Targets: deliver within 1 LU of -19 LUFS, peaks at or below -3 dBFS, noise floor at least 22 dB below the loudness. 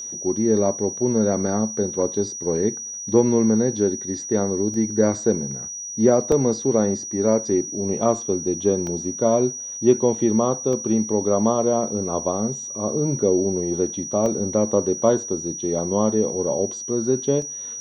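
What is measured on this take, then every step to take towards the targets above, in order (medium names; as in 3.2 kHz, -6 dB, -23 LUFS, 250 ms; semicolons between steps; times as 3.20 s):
dropouts 6; longest dropout 1.3 ms; steady tone 5.8 kHz; tone level -30 dBFS; loudness -21.5 LUFS; peak level -4.0 dBFS; loudness target -19.0 LUFS
-> interpolate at 4.74/6.32/8.87/10.73/14.26/17.42 s, 1.3 ms; band-stop 5.8 kHz, Q 30; trim +2.5 dB; peak limiter -3 dBFS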